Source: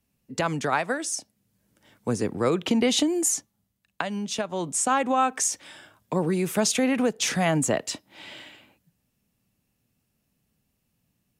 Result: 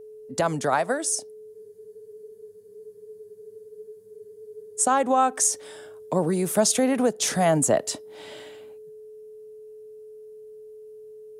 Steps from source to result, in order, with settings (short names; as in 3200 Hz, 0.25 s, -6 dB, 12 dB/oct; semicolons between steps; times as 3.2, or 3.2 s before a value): fifteen-band EQ 630 Hz +6 dB, 2500 Hz -7 dB, 10000 Hz +8 dB; whine 430 Hz -41 dBFS; spectral freeze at 1.56, 3.23 s